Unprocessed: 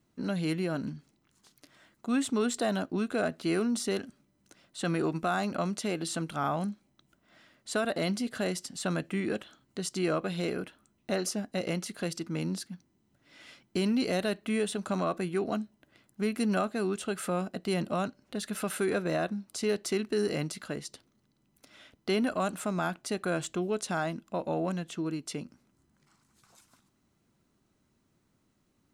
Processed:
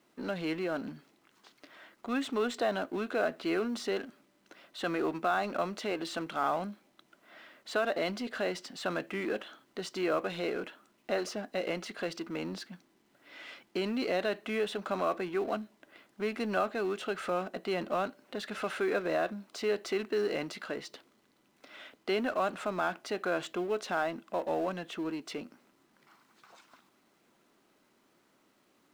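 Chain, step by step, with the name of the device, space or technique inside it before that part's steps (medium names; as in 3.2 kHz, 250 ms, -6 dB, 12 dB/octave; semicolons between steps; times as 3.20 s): phone line with mismatched companding (band-pass 360–3300 Hz; companding laws mixed up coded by mu)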